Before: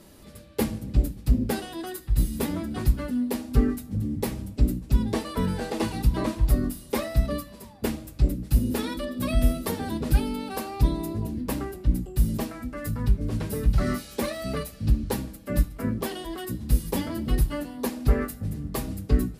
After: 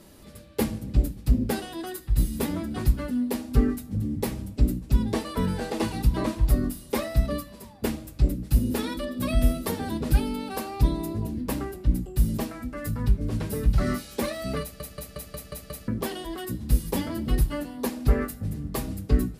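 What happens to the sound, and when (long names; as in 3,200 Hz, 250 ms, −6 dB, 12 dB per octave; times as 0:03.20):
0:14.62: stutter in place 0.18 s, 7 plays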